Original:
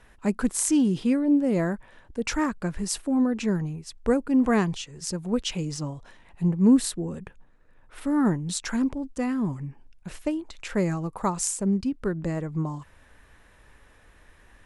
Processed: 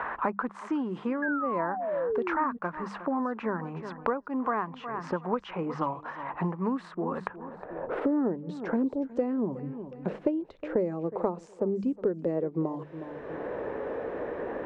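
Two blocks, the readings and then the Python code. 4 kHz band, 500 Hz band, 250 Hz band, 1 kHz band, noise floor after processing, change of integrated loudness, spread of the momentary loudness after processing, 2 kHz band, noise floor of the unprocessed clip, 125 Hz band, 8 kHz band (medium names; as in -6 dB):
-16.5 dB, +1.0 dB, -7.0 dB, +3.5 dB, -49 dBFS, -5.5 dB, 8 LU, 0.0 dB, -56 dBFS, -9.0 dB, under -30 dB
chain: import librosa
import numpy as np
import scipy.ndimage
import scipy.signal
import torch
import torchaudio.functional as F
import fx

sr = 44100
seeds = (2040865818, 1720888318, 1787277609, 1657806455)

p1 = fx.spacing_loss(x, sr, db_at_10k=22)
p2 = p1 + fx.echo_feedback(p1, sr, ms=363, feedback_pct=17, wet_db=-21.0, dry=0)
p3 = fx.rider(p2, sr, range_db=5, speed_s=0.5)
p4 = fx.filter_sweep_bandpass(p3, sr, from_hz=1100.0, to_hz=470.0, start_s=7.39, end_s=7.93, q=2.5)
p5 = fx.spec_paint(p4, sr, seeds[0], shape='fall', start_s=1.22, length_s=1.35, low_hz=230.0, high_hz=1700.0, level_db=-44.0)
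p6 = fx.hum_notches(p5, sr, base_hz=50, count=4)
p7 = fx.band_squash(p6, sr, depth_pct=100)
y = F.gain(torch.from_numpy(p7), 8.0).numpy()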